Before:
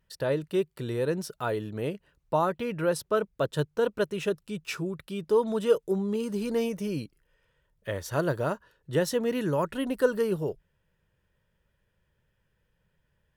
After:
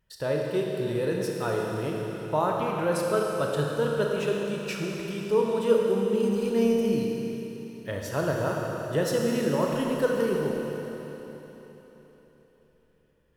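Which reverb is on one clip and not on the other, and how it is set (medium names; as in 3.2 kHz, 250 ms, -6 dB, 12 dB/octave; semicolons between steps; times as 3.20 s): Schroeder reverb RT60 3.9 s, combs from 27 ms, DRR -1 dB; trim -1.5 dB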